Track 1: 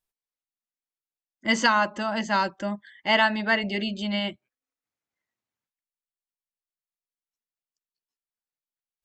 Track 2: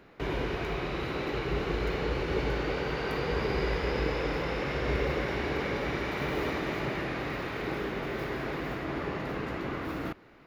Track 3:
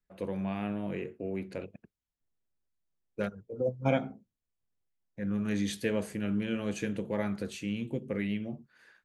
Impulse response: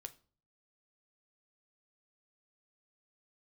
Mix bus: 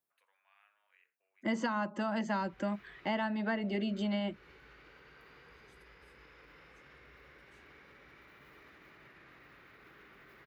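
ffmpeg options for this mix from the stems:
-filter_complex "[0:a]highpass=150,volume=2.5dB[link_01];[1:a]acompressor=threshold=-39dB:ratio=6,adelay=2100,volume=2dB,asplit=2[link_02][link_03];[link_03]volume=-22dB[link_04];[2:a]acompressor=threshold=-33dB:ratio=6,volume=-11.5dB[link_05];[link_02][link_05]amix=inputs=2:normalize=0,highpass=frequency=1300:width=0.5412,highpass=frequency=1300:width=1.3066,alimiter=level_in=21.5dB:limit=-24dB:level=0:latency=1:release=143,volume=-21.5dB,volume=0dB[link_06];[link_04]aecho=0:1:89:1[link_07];[link_01][link_06][link_07]amix=inputs=3:normalize=0,acrossover=split=250|1200[link_08][link_09][link_10];[link_08]acompressor=threshold=-37dB:ratio=4[link_11];[link_09]acompressor=threshold=-36dB:ratio=4[link_12];[link_10]acompressor=threshold=-36dB:ratio=4[link_13];[link_11][link_12][link_13]amix=inputs=3:normalize=0,equalizer=frequency=4900:width=0.37:gain=-10"

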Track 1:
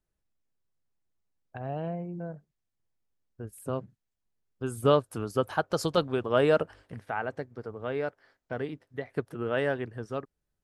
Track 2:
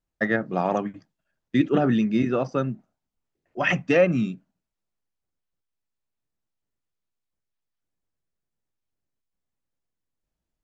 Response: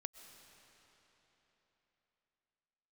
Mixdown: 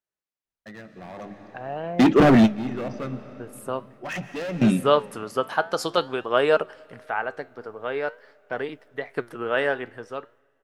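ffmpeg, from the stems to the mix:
-filter_complex "[0:a]highpass=frequency=830:poles=1,highshelf=frequency=4100:gain=-6.5,volume=2dB,asplit=3[link_01][link_02][link_03];[link_02]volume=-16dB[link_04];[1:a]asoftclip=type=hard:threshold=-22dB,adelay=450,volume=1.5dB,asplit=2[link_05][link_06];[link_06]volume=-11dB[link_07];[link_03]apad=whole_len=488951[link_08];[link_05][link_08]sidechaingate=range=-33dB:threshold=-59dB:ratio=16:detection=peak[link_09];[2:a]atrim=start_sample=2205[link_10];[link_04][link_07]amix=inputs=2:normalize=0[link_11];[link_11][link_10]afir=irnorm=-1:irlink=0[link_12];[link_01][link_09][link_12]amix=inputs=3:normalize=0,dynaudnorm=framelen=270:gausssize=11:maxgain=14dB,flanger=delay=4.2:depth=8.2:regen=84:speed=0.46:shape=triangular"

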